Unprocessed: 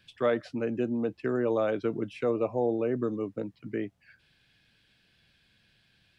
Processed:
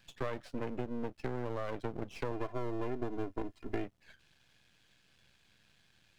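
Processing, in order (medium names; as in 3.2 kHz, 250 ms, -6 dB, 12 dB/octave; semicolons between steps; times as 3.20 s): half-wave rectifier; compression 6:1, threshold -34 dBFS, peak gain reduction 11.5 dB; 2.31–3.84 s: comb 2.9 ms, depth 70%; trim +2 dB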